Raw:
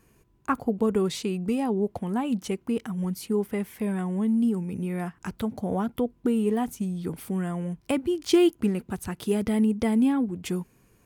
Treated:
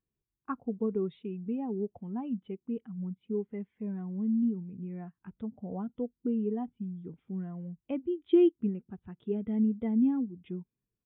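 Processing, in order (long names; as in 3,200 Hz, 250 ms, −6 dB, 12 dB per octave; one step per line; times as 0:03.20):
downsampling to 8,000 Hz
every bin expanded away from the loudest bin 1.5 to 1
level −5 dB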